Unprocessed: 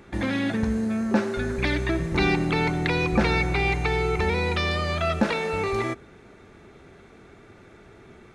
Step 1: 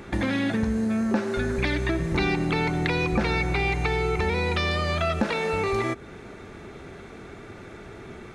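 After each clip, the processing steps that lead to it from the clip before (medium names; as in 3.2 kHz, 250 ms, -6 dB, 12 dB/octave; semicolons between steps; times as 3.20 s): compression 2.5:1, threshold -33 dBFS, peak gain reduction 11.5 dB; trim +7.5 dB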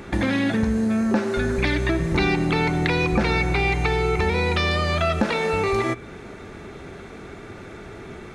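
de-hum 116.6 Hz, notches 34; trim +3.5 dB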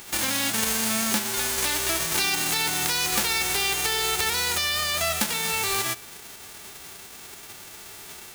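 formants flattened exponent 0.1; trim -4 dB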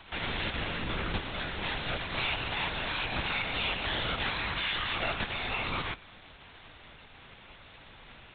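LPC vocoder at 8 kHz whisper; trim -4.5 dB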